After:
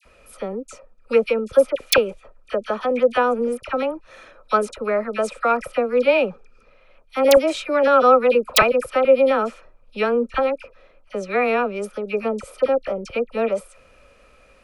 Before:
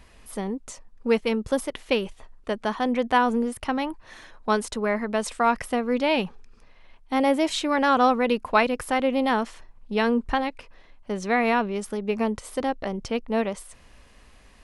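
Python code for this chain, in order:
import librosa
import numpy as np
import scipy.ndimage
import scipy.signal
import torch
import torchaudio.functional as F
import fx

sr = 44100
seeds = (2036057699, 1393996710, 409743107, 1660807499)

y = fx.small_body(x, sr, hz=(540.0, 1300.0, 2400.0), ring_ms=25, db=16)
y = (np.mod(10.0 ** (-0.5 / 20.0) * y + 1.0, 2.0) - 1.0) / 10.0 ** (-0.5 / 20.0)
y = fx.dispersion(y, sr, late='lows', ms=55.0, hz=1500.0)
y = y * 10.0 ** (-4.0 / 20.0)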